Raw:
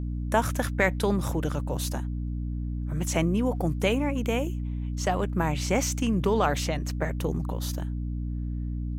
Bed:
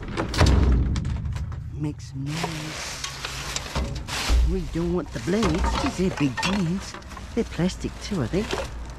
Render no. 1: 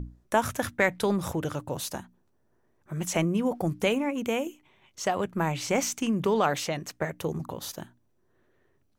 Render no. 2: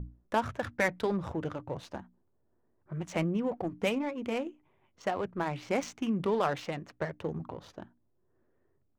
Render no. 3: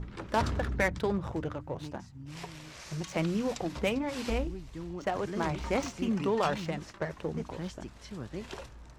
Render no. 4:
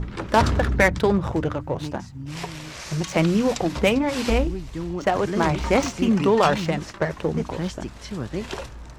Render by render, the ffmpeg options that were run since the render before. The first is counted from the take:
-af "bandreject=f=60:t=h:w=6,bandreject=f=120:t=h:w=6,bandreject=f=180:t=h:w=6,bandreject=f=240:t=h:w=6,bandreject=f=300:t=h:w=6"
-af "flanger=delay=1.6:depth=2.8:regen=-63:speed=1.7:shape=triangular,adynamicsmooth=sensitivity=6.5:basefreq=1500"
-filter_complex "[1:a]volume=0.178[s0];[0:a][s0]amix=inputs=2:normalize=0"
-af "volume=3.35"

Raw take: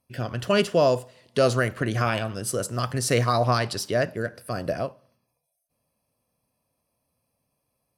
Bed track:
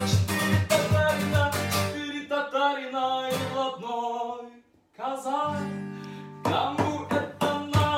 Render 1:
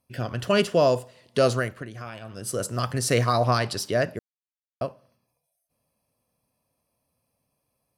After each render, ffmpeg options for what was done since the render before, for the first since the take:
-filter_complex "[0:a]asplit=5[s0][s1][s2][s3][s4];[s0]atrim=end=1.89,asetpts=PTS-STARTPTS,afade=t=out:st=1.45:d=0.44:silence=0.199526[s5];[s1]atrim=start=1.89:end=2.2,asetpts=PTS-STARTPTS,volume=0.2[s6];[s2]atrim=start=2.2:end=4.19,asetpts=PTS-STARTPTS,afade=t=in:d=0.44:silence=0.199526,afade=t=out:st=1.986:d=0.004:c=hsin[s7];[s3]atrim=start=4.19:end=4.81,asetpts=PTS-STARTPTS,volume=0[s8];[s4]atrim=start=4.81,asetpts=PTS-STARTPTS,afade=t=in:d=0.004:c=hsin[s9];[s5][s6][s7][s8][s9]concat=n=5:v=0:a=1"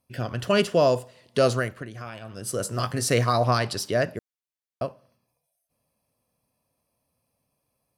-filter_complex "[0:a]asettb=1/sr,asplit=3[s0][s1][s2];[s0]atrim=end=2.634[s3];[s1]atrim=start=2.63:end=3.08,asetpts=PTS-STARTPTS,afade=t=in:d=0.004:c=qsin,afade=t=out:st=0.446:d=0.004:c=qsin,asplit=2[s4][s5];[s5]adelay=19,volume=0.398[s6];[s4][s6]amix=inputs=2:normalize=0,atrim=end_sample=19845[s7];[s2]atrim=start=3.076[s8];[s3][s7]acrossfade=d=0.004:c1=hsin:c2=qsin[s9];[s9][s8]acrossfade=d=0.004:c1=qsin:c2=hsin"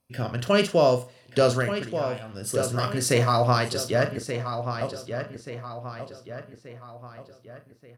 -filter_complex "[0:a]asplit=2[s0][s1];[s1]adelay=40,volume=0.335[s2];[s0][s2]amix=inputs=2:normalize=0,asplit=2[s3][s4];[s4]adelay=1181,lowpass=f=4400:p=1,volume=0.376,asplit=2[s5][s6];[s6]adelay=1181,lowpass=f=4400:p=1,volume=0.46,asplit=2[s7][s8];[s8]adelay=1181,lowpass=f=4400:p=1,volume=0.46,asplit=2[s9][s10];[s10]adelay=1181,lowpass=f=4400:p=1,volume=0.46,asplit=2[s11][s12];[s12]adelay=1181,lowpass=f=4400:p=1,volume=0.46[s13];[s3][s5][s7][s9][s11][s13]amix=inputs=6:normalize=0"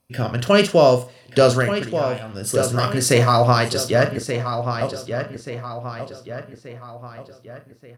-af "volume=2,alimiter=limit=0.708:level=0:latency=1"

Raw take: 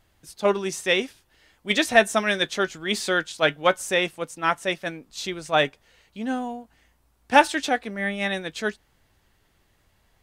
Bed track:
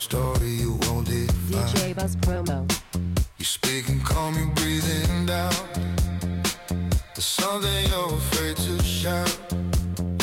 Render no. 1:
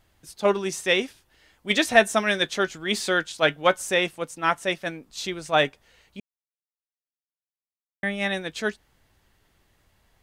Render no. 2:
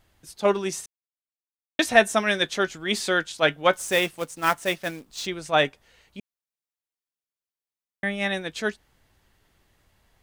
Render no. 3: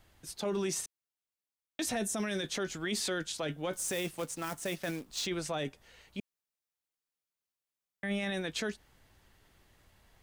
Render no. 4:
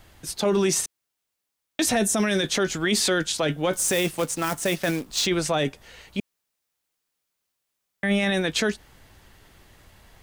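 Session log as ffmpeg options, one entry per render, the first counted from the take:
-filter_complex "[0:a]asplit=3[s0][s1][s2];[s0]atrim=end=6.2,asetpts=PTS-STARTPTS,afade=t=out:st=6.196:d=0.004:c=hsin[s3];[s1]atrim=start=6.2:end=8.03,asetpts=PTS-STARTPTS,volume=0[s4];[s2]atrim=start=8.03,asetpts=PTS-STARTPTS,afade=t=in:d=0.004:c=hsin[s5];[s3][s4][s5]concat=n=3:v=0:a=1"
-filter_complex "[0:a]asettb=1/sr,asplit=3[s0][s1][s2];[s0]atrim=end=3.734[s3];[s1]atrim=start=3.73:end=5.26,asetpts=PTS-STARTPTS,afade=t=in:d=0.004:c=qsin,afade=t=out:st=1.526:d=0.004:c=qsin,acrusher=bits=3:mode=log:mix=0:aa=0.000001[s4];[s2]atrim=start=5.256[s5];[s3][s4]acrossfade=d=0.004:c1=hsin:c2=qsin[s6];[s6][s5]acrossfade=d=0.004:c1=qsin:c2=hsin,asplit=3[s7][s8][s9];[s7]atrim=end=0.86,asetpts=PTS-STARTPTS,afade=t=out:st=0.856:d=0.004:c=hsin[s10];[s8]atrim=start=0.86:end=1.79,asetpts=PTS-STARTPTS,volume=0[s11];[s9]atrim=start=1.79,asetpts=PTS-STARTPTS,afade=t=in:d=0.004:c=hsin[s12];[s10][s11][s12]concat=n=3:v=0:a=1"
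-filter_complex "[0:a]acrossover=split=430|4500[s0][s1][s2];[s1]acompressor=threshold=0.0355:ratio=6[s3];[s0][s3][s2]amix=inputs=3:normalize=0,alimiter=level_in=1.19:limit=0.0631:level=0:latency=1:release=19,volume=0.841"
-af "volume=3.76"

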